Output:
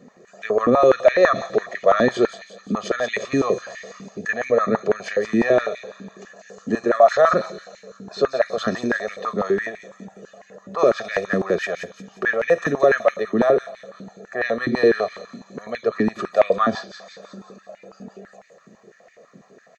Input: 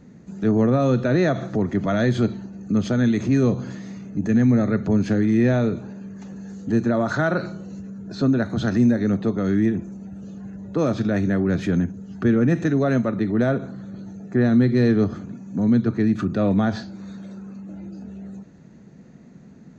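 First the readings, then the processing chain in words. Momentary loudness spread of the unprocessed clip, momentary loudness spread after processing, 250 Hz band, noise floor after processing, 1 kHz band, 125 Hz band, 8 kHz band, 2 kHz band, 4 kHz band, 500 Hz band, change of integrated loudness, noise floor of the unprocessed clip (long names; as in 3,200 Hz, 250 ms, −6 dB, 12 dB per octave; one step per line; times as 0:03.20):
18 LU, 21 LU, −7.5 dB, −54 dBFS, +9.0 dB, −14.0 dB, can't be measured, +6.5 dB, +4.5 dB, +6.5 dB, +0.5 dB, −46 dBFS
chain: comb filter 1.7 ms, depth 90%
delay with a high-pass on its return 176 ms, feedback 49%, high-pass 4,000 Hz, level −4.5 dB
high-pass on a step sequencer 12 Hz 280–2,100 Hz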